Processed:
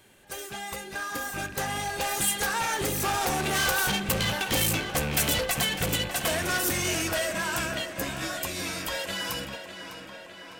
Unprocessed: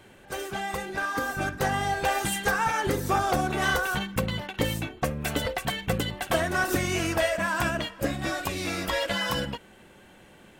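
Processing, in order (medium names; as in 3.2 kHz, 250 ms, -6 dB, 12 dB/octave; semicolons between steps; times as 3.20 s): rattle on loud lows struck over -36 dBFS, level -31 dBFS; Doppler pass-by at 4.69 s, 7 m/s, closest 6.8 m; saturation -32 dBFS, distortion -8 dB; treble shelf 3.6 kHz +12 dB; on a send: tape echo 604 ms, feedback 72%, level -9 dB, low-pass 4.9 kHz; on the sum: trim +6.5 dB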